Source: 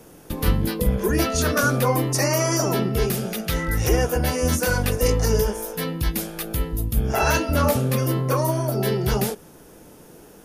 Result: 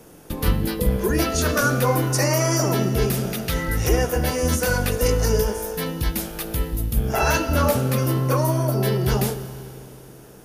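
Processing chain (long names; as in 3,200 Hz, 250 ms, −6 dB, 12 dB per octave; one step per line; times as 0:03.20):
four-comb reverb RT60 2.9 s, combs from 26 ms, DRR 11.5 dB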